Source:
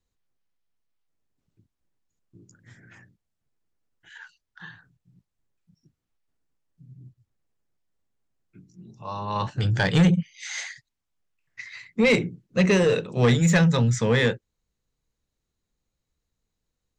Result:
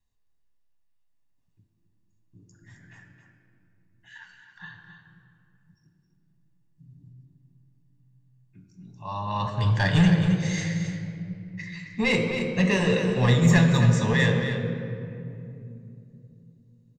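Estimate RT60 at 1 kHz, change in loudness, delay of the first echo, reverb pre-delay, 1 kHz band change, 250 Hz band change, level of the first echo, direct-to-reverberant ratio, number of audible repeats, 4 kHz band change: 2.3 s, -1.0 dB, 267 ms, 3 ms, +0.5 dB, +0.5 dB, -9.0 dB, 2.0 dB, 1, -0.5 dB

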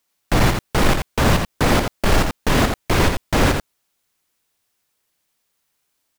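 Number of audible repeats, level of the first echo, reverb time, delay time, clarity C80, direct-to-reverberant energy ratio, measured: 1, -5.5 dB, no reverb, 84 ms, no reverb, no reverb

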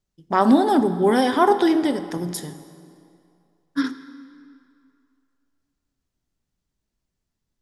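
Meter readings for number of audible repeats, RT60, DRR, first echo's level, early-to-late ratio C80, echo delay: no echo, 2.4 s, 11.0 dB, no echo, 13.0 dB, no echo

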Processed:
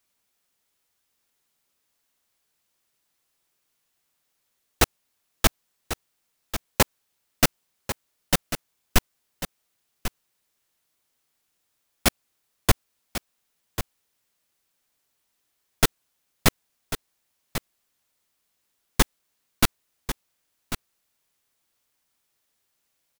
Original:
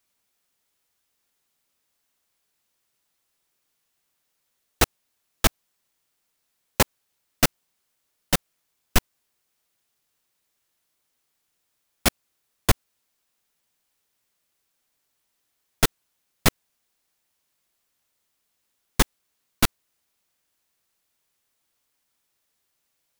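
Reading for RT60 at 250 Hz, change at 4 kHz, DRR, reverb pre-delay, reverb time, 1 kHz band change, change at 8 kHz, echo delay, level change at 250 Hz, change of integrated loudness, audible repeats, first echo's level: no reverb, +0.5 dB, no reverb, no reverb, no reverb, +0.5 dB, +0.5 dB, 1094 ms, +0.5 dB, -2.5 dB, 1, -11.0 dB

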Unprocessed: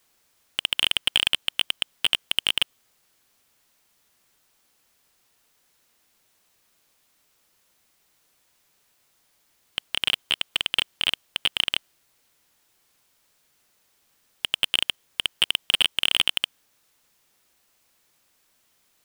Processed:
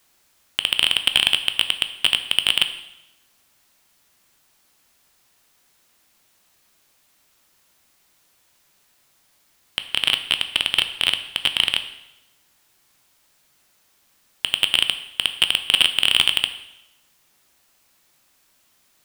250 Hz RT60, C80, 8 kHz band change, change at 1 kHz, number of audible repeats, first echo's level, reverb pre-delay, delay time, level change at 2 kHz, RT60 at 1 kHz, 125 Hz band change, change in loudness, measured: 0.95 s, 13.5 dB, +4.5 dB, +4.5 dB, no echo, no echo, 6 ms, no echo, +4.5 dB, 0.90 s, +4.5 dB, +4.5 dB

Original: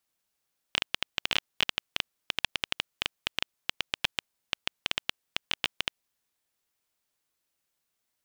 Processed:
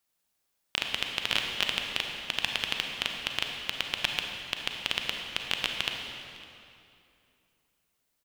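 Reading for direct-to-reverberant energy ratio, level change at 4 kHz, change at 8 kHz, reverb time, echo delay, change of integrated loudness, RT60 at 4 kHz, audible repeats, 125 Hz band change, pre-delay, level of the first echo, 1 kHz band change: 2.0 dB, +2.0 dB, +2.5 dB, 2.7 s, 557 ms, +2.0 dB, 2.1 s, 1, +3.0 dB, 33 ms, -23.5 dB, +2.0 dB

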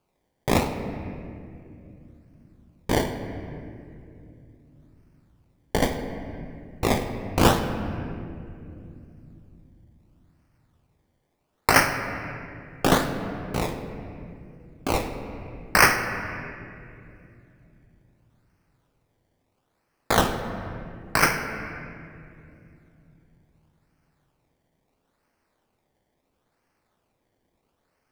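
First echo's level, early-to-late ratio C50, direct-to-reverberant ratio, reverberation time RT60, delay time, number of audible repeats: no echo, 7.0 dB, 5.0 dB, 2.6 s, no echo, no echo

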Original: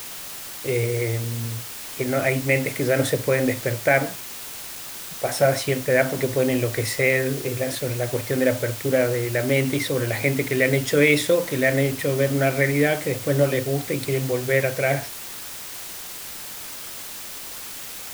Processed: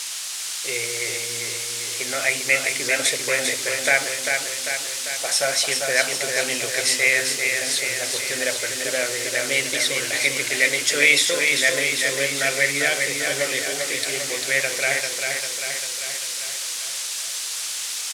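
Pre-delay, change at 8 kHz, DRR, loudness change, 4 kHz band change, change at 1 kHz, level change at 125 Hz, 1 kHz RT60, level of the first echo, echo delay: no reverb, +10.5 dB, no reverb, +2.0 dB, +10.0 dB, -1.5 dB, -17.5 dB, no reverb, -5.0 dB, 396 ms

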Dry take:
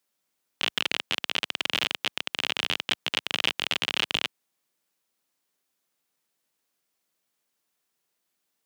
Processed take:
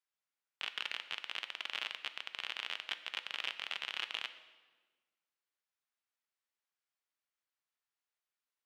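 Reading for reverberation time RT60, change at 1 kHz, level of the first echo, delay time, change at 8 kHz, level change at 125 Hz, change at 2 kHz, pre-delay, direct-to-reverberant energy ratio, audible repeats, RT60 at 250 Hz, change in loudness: 1.4 s, -11.5 dB, no echo, no echo, -17.5 dB, under -30 dB, -11.0 dB, 3 ms, 10.0 dB, no echo, 1.7 s, -12.5 dB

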